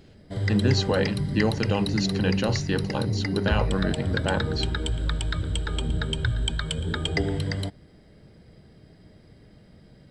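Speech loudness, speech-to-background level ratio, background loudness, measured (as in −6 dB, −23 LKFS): −27.5 LKFS, 0.5 dB, −28.0 LKFS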